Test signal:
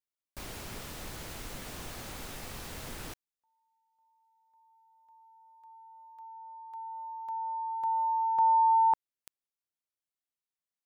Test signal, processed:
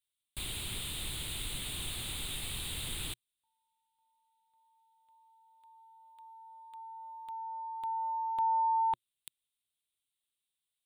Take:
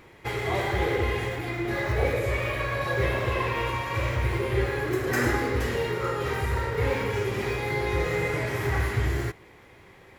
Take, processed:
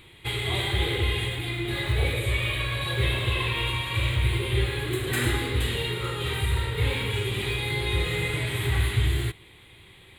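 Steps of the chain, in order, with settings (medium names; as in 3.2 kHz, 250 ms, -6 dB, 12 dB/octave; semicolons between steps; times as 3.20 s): FFT filter 120 Hz 0 dB, 240 Hz -7 dB, 350 Hz -5 dB, 560 Hz -12 dB, 1 kHz -8 dB, 1.7 kHz -7 dB, 3.7 kHz +11 dB, 5.6 kHz -17 dB, 8.8 kHz +9 dB, 13 kHz -1 dB; trim +3 dB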